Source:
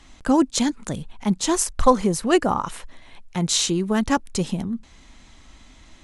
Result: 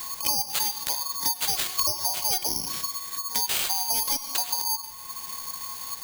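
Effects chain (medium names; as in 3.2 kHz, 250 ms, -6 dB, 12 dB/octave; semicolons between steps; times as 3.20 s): four frequency bands reordered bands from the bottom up 4321; pre-echo 61 ms -23.5 dB; reverberation RT60 0.85 s, pre-delay 83 ms, DRR 15 dB; compression 3:1, threshold -25 dBFS, peak gain reduction 12 dB; careless resampling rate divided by 8×, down none, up zero stuff; feedback comb 360 Hz, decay 0.63 s, mix 70%; dynamic bell 3.5 kHz, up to +6 dB, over -45 dBFS, Q 1.3; three bands compressed up and down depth 70%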